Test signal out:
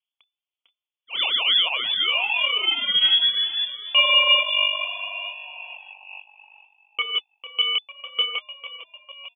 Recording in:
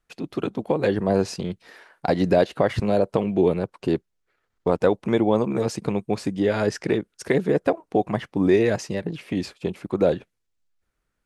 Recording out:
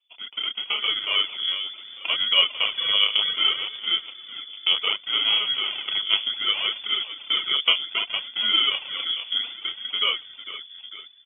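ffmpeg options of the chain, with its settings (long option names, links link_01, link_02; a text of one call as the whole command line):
ffmpeg -i in.wav -filter_complex "[0:a]asplit=2[link_01][link_02];[link_02]adelay=29,volume=-3.5dB[link_03];[link_01][link_03]amix=inputs=2:normalize=0,asplit=6[link_04][link_05][link_06][link_07][link_08][link_09];[link_05]adelay=450,afreqshift=-49,volume=-12dB[link_10];[link_06]adelay=900,afreqshift=-98,volume=-17.7dB[link_11];[link_07]adelay=1350,afreqshift=-147,volume=-23.4dB[link_12];[link_08]adelay=1800,afreqshift=-196,volume=-29dB[link_13];[link_09]adelay=2250,afreqshift=-245,volume=-34.7dB[link_14];[link_04][link_10][link_11][link_12][link_13][link_14]amix=inputs=6:normalize=0,aresample=16000,acrusher=samples=9:mix=1:aa=0.000001,aresample=44100,aphaser=in_gain=1:out_gain=1:delay=4.9:decay=0.53:speed=0.65:type=sinusoidal,lowpass=frequency=3000:width_type=q:width=0.5098,lowpass=frequency=3000:width_type=q:width=0.6013,lowpass=frequency=3000:width_type=q:width=0.9,lowpass=frequency=3000:width_type=q:width=2.563,afreqshift=-3500,volume=-6dB" out.wav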